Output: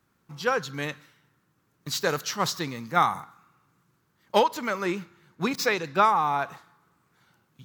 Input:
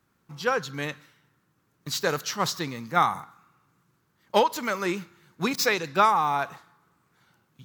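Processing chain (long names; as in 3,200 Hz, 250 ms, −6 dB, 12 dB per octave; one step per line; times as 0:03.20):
0:04.48–0:06.49: high-shelf EQ 4,000 Hz −6 dB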